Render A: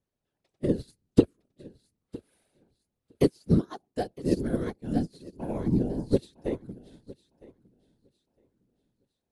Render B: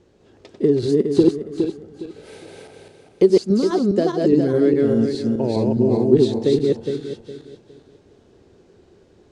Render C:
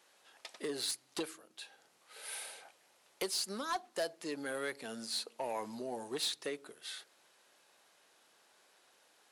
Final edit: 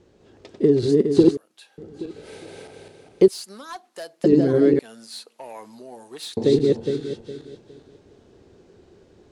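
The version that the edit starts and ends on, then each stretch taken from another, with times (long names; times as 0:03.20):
B
0:01.37–0:01.78: punch in from C
0:03.28–0:04.24: punch in from C
0:04.79–0:06.37: punch in from C
not used: A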